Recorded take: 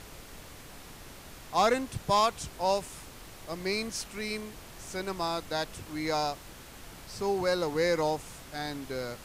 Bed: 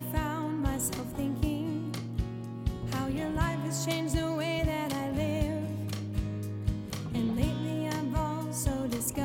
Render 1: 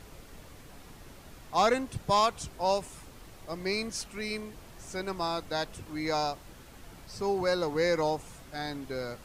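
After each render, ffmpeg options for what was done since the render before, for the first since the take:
-af "afftdn=nr=6:nf=-48"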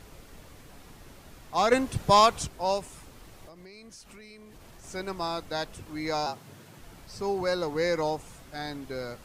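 -filter_complex "[0:a]asettb=1/sr,asplit=3[a][b][c];[a]atrim=end=3.464[d];[b]atrim=start=3.46:end=4.84,asetpts=PTS-STARTPTS,afade=t=in:d=0.004:c=qsin,afade=t=out:st=1.376:d=0.004:c=qsin,acompressor=threshold=-45dB:ratio=10:attack=3.2:release=140:knee=1:detection=peak[e];[c]atrim=start=4.836[f];[d][e]acrossfade=d=0.004:c1=hsin:c2=qsin[g];[g][f]acrossfade=d=0.004:c1=qsin:c2=hsin,asettb=1/sr,asplit=3[h][i][j];[h]atrim=end=6.264[k];[i]atrim=start=6.26:end=6.79,asetpts=PTS-STARTPTS,afade=t=in:d=0.004:c=qsin,afade=t=out:st=0.526:d=0.004:c=qsin,afreqshift=95[l];[j]atrim=start=6.786[m];[k][l]acrossfade=d=0.004:c1=hsin:c2=qsin[n];[n][m]acrossfade=d=0.004:c1=qsin:c2=hsin,asplit=3[o][p][q];[o]atrim=end=1.722[r];[p]atrim=start=1.718:end=2.472,asetpts=PTS-STARTPTS,volume=6dB[s];[q]atrim=start=2.468[t];[r][s]acrossfade=d=0.004:c1=hsin:c2=hsin[u];[u][t]acrossfade=d=0.004:c1=hsin:c2=hsin"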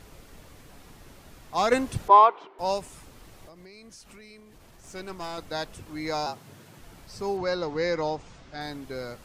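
-filter_complex "[0:a]asettb=1/sr,asplit=3[a][b][c];[a]atrim=end=2.084[d];[b]atrim=start=2.08:end=2.59,asetpts=PTS-STARTPTS,afade=t=in:d=0.004:c=qsin,afade=t=out:st=0.506:d=0.004:c=qsin,highpass=f=370:w=0.5412,highpass=f=370:w=1.3066,equalizer=f=390:t=q:w=4:g=7,equalizer=f=550:t=q:w=4:g=-5,equalizer=f=950:t=q:w=4:g=9,equalizer=f=1.7k:t=q:w=4:g=-6,equalizer=f=2.5k:t=q:w=4:g=-5,lowpass=f=2.6k:w=0.5412,lowpass=f=2.6k:w=1.3066[e];[c]atrim=start=2.586[f];[d][e]acrossfade=d=0.004:c1=hsin:c2=qsin[g];[g][f]acrossfade=d=0.004:c1=qsin:c2=hsin,asettb=1/sr,asplit=3[h][i][j];[h]atrim=end=4.404[k];[i]atrim=start=4.4:end=5.38,asetpts=PTS-STARTPTS,afade=t=in:d=0.004:c=qsin,afade=t=out:st=0.976:d=0.004:c=qsin,aeval=exprs='(tanh(31.6*val(0)+0.55)-tanh(0.55))/31.6':c=same[l];[j]atrim=start=5.376[m];[k][l]acrossfade=d=0.004:c1=hsin:c2=qsin[n];[n][m]acrossfade=d=0.004:c1=qsin:c2=hsin,asettb=1/sr,asplit=3[o][p][q];[o]atrim=end=7.374[r];[p]atrim=start=7.37:end=8.61,asetpts=PTS-STARTPTS,afade=t=in:d=0.004:c=qsin,afade=t=out:st=1.236:d=0.004:c=qsin,lowpass=f=6.1k:w=0.5412,lowpass=f=6.1k:w=1.3066[s];[q]atrim=start=8.606[t];[r][s]acrossfade=d=0.004:c1=hsin:c2=qsin[u];[u][t]acrossfade=d=0.004:c1=qsin:c2=hsin"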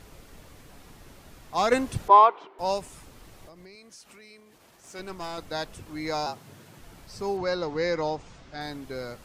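-filter_complex "[0:a]asettb=1/sr,asplit=3[a][b][c];[a]atrim=end=3.754[d];[b]atrim=start=3.75:end=4.99,asetpts=PTS-STARTPTS,afade=t=in:d=0.004:c=qsin,afade=t=out:st=1.236:d=0.004:c=qsin,highpass=f=310:p=1[e];[c]atrim=start=4.986[f];[d][e]acrossfade=d=0.004:c1=hsin:c2=qsin[g];[g][f]acrossfade=d=0.004:c1=qsin:c2=hsin"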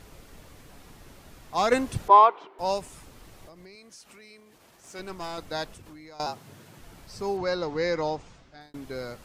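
-filter_complex "[0:a]asettb=1/sr,asplit=3[a][b][c];[a]atrim=end=5.724[d];[b]atrim=start=5.72:end=6.2,asetpts=PTS-STARTPTS,afade=t=in:d=0.004:c=qsin,afade=t=out:st=0.476:d=0.004:c=qsin,acompressor=threshold=-43dB:ratio=16:attack=3.2:release=140:knee=1:detection=peak[e];[c]atrim=start=6.196[f];[d][e]acrossfade=d=0.004:c1=hsin:c2=qsin[g];[g][f]acrossfade=d=0.004:c1=qsin:c2=hsin,asplit=2[h][i];[h]atrim=end=8.74,asetpts=PTS-STARTPTS,afade=t=out:st=8.17:d=0.57[j];[i]atrim=start=8.74,asetpts=PTS-STARTPTS,afade=t=in:d=0.004:c=hsin[k];[j][k]concat=n=2:v=0:a=1"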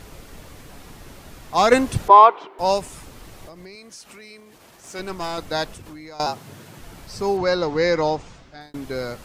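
-af "volume=7.5dB,alimiter=limit=-1dB:level=0:latency=1"

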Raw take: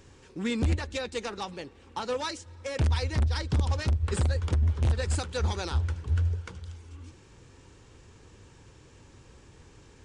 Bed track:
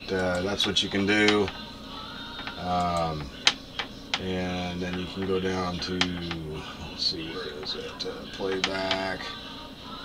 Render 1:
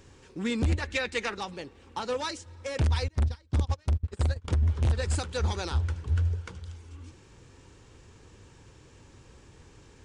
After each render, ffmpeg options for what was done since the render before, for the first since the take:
-filter_complex "[0:a]asettb=1/sr,asplit=3[a][b][c];[a]atrim=end=0.824[d];[b]atrim=start=0.82:end=1.35,asetpts=PTS-STARTPTS,afade=t=in:d=0.004:c=qsin,afade=t=out:st=0.526:d=0.004:c=qsin,equalizer=f=2k:t=o:w=1.1:g=10.5[e];[c]atrim=start=1.346[f];[d][e]acrossfade=d=0.004:c1=hsin:c2=qsin[g];[g][f]acrossfade=d=0.004:c1=qsin:c2=hsin,asettb=1/sr,asplit=3[h][i][j];[h]atrim=end=3.084[k];[i]atrim=start=3.08:end=4.48,asetpts=PTS-STARTPTS,afade=t=in:d=0.004:c=qsin,afade=t=out:st=1.396:d=0.004:c=qsin,agate=range=-27dB:threshold=-26dB:ratio=16:release=100:detection=peak[l];[j]atrim=start=4.476[m];[k][l]acrossfade=d=0.004:c1=hsin:c2=qsin[n];[n][m]acrossfade=d=0.004:c1=qsin:c2=hsin"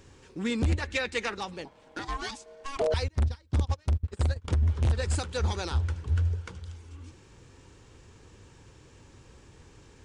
-filter_complex "[0:a]asettb=1/sr,asplit=3[a][b][c];[a]atrim=end=1.654[d];[b]atrim=start=1.65:end=2.94,asetpts=PTS-STARTPTS,afade=t=in:d=0.004:c=qsin,afade=t=out:st=1.286:d=0.004:c=qsin,aeval=exprs='val(0)*sin(2*PI*550*n/s)':c=same[e];[c]atrim=start=2.936[f];[d][e]acrossfade=d=0.004:c1=hsin:c2=qsin[g];[g][f]acrossfade=d=0.004:c1=qsin:c2=hsin"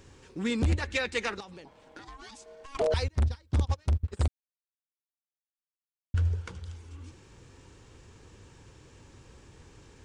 -filter_complex "[0:a]asettb=1/sr,asplit=3[a][b][c];[a]atrim=end=1.404[d];[b]atrim=start=1.4:end=2.75,asetpts=PTS-STARTPTS,afade=t=in:d=0.004:c=qsin,afade=t=out:st=1.346:d=0.004:c=qsin,acompressor=threshold=-43dB:ratio=6:attack=3.2:release=140:knee=1:detection=peak[e];[c]atrim=start=2.746[f];[d][e]acrossfade=d=0.004:c1=hsin:c2=qsin[g];[g][f]acrossfade=d=0.004:c1=qsin:c2=hsin,asplit=3[h][i][j];[h]atrim=end=4.28,asetpts=PTS-STARTPTS,afade=t=out:st=4.276:d=0.004:c=hsin[k];[i]atrim=start=4.28:end=6.14,asetpts=PTS-STARTPTS,volume=0[l];[j]atrim=start=6.14,asetpts=PTS-STARTPTS,afade=t=in:d=0.004:c=hsin[m];[k][l][m]concat=n=3:v=0:a=1"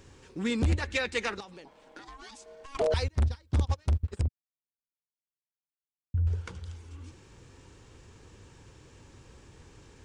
-filter_complex "[0:a]asettb=1/sr,asplit=3[a][b][c];[a]atrim=end=1.454[d];[b]atrim=start=1.45:end=2.44,asetpts=PTS-STARTPTS,afade=t=in:d=0.004:c=qsin,afade=t=out:st=0.986:d=0.004:c=qsin,equalizer=f=94:w=1.5:g=-13[e];[c]atrim=start=2.436[f];[d][e]acrossfade=d=0.004:c1=hsin:c2=qsin[g];[g][f]acrossfade=d=0.004:c1=qsin:c2=hsin,asettb=1/sr,asplit=3[h][i][j];[h]atrim=end=4.214[k];[i]atrim=start=4.21:end=6.27,asetpts=PTS-STARTPTS,afade=t=in:d=0.004:c=qsin,afade=t=out:st=2.056:d=0.004:c=qsin,bandpass=f=120:t=q:w=0.73[l];[j]atrim=start=6.266[m];[k][l]acrossfade=d=0.004:c1=hsin:c2=qsin[n];[n][m]acrossfade=d=0.004:c1=qsin:c2=hsin"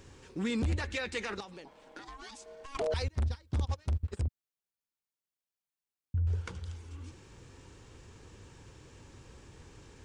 -af "alimiter=level_in=1dB:limit=-24dB:level=0:latency=1:release=18,volume=-1dB"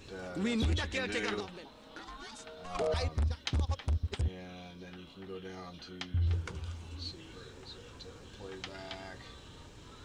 -filter_complex "[1:a]volume=-17dB[a];[0:a][a]amix=inputs=2:normalize=0"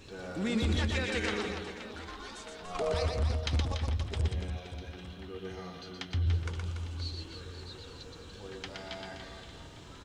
-af "aecho=1:1:120|288|523.2|852.5|1313:0.631|0.398|0.251|0.158|0.1"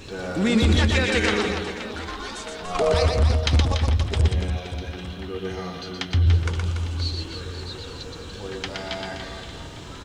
-af "volume=11dB"

